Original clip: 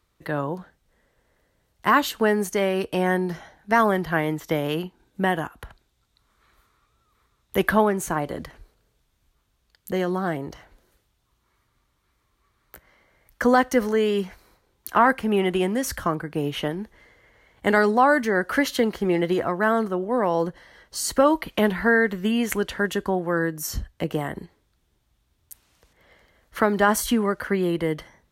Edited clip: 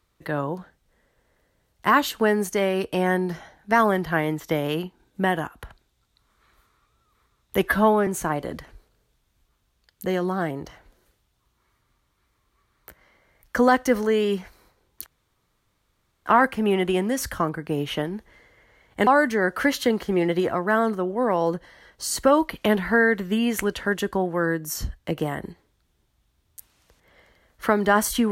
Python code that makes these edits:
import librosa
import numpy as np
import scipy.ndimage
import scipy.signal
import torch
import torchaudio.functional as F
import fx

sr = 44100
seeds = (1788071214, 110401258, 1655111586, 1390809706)

y = fx.edit(x, sr, fx.stretch_span(start_s=7.65, length_s=0.28, factor=1.5),
    fx.insert_room_tone(at_s=14.92, length_s=1.2),
    fx.cut(start_s=17.73, length_s=0.27), tone=tone)